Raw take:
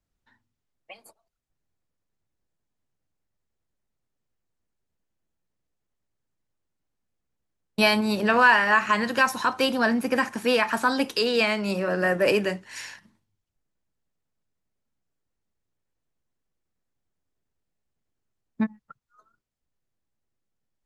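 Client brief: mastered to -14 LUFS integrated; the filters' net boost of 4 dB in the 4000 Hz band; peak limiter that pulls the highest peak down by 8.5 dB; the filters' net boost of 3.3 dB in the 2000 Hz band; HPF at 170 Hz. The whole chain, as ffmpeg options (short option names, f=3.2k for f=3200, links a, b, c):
-af "highpass=170,equalizer=f=2k:t=o:g=3.5,equalizer=f=4k:t=o:g=4,volume=9dB,alimiter=limit=-3.5dB:level=0:latency=1"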